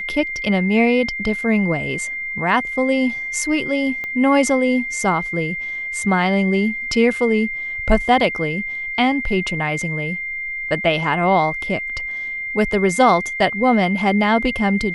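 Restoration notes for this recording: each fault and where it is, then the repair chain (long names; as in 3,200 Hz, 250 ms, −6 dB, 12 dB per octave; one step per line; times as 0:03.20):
whistle 2,100 Hz −24 dBFS
0:04.04: click −16 dBFS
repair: click removal
notch filter 2,100 Hz, Q 30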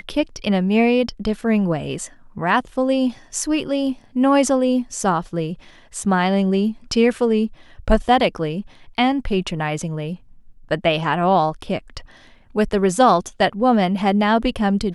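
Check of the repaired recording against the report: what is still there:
0:04.04: click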